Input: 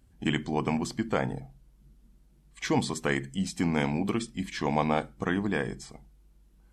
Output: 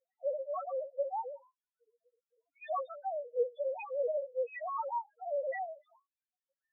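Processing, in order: sine-wave speech; frequency shift +270 Hz; loudest bins only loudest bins 1

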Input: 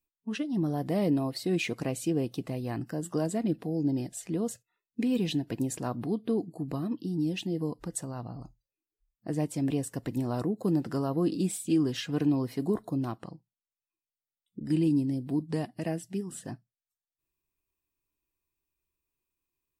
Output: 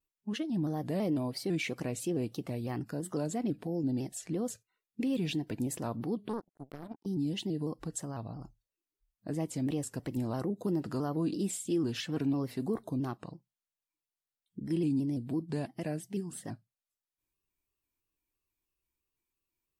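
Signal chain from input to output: in parallel at +1.5 dB: limiter -25.5 dBFS, peak gain reduction 9 dB; 6.28–7.06 on the sum: power-law curve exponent 3; shaped vibrato square 3 Hz, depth 100 cents; gain -8.5 dB

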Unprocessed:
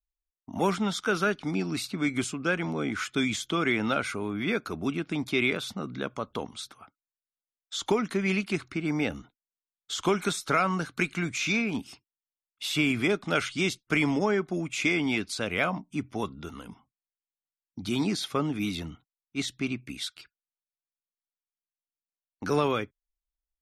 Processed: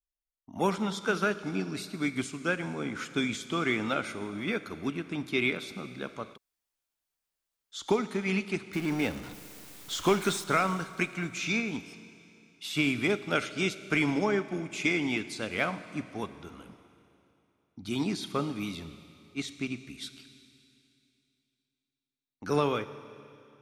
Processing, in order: 8.73–10.44 zero-crossing step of -32 dBFS; reverb RT60 2.8 s, pre-delay 28 ms, DRR 9.5 dB; 6.35–7.74 room tone, crossfade 0.06 s; upward expander 1.5:1, over -34 dBFS

